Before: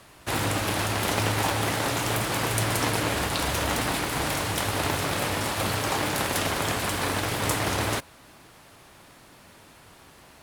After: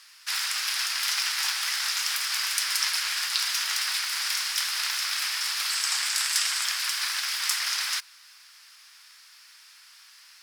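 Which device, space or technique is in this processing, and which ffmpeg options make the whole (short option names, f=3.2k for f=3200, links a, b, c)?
headphones lying on a table: -filter_complex "[0:a]asettb=1/sr,asplit=3[a][b][c];[a]atrim=end=5.704[d];[b]atrim=start=5.7:end=6.65,asetpts=PTS-STARTPTS,afade=t=in:d=0.004:c=qsin,afade=t=out:st=0.946:d=0.004:c=qsin,equalizer=f=160:t=o:w=0.33:g=12,equalizer=f=8k:t=o:w=0.33:g=9,equalizer=f=16k:t=o:w=0.33:g=-5[e];[c]atrim=start=6.646[f];[d][e]acrossfade=d=0.004:c1=hsin:c2=qsin[g];[g][f]acrossfade=d=0.004:c1=qsin:c2=hsin,highpass=f=1.4k:w=0.5412,highpass=f=1.4k:w=1.3066,equalizer=f=5.1k:t=o:w=0.47:g=12"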